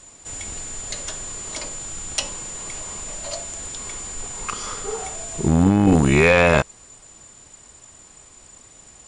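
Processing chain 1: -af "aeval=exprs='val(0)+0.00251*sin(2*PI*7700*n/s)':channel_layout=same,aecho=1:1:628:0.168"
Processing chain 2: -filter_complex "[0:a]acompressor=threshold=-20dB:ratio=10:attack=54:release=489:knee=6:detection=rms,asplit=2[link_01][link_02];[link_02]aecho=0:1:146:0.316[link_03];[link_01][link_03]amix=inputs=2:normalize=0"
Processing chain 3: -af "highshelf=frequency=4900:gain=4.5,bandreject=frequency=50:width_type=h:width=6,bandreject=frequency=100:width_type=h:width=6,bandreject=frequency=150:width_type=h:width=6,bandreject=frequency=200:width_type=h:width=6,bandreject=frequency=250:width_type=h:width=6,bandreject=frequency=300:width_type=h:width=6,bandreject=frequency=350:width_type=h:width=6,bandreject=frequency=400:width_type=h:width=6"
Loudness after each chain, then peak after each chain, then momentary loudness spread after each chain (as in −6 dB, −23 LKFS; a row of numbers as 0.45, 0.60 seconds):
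−22.0, −27.0, −22.0 LKFS; −3.0, −9.0, −1.5 dBFS; 15, 20, 26 LU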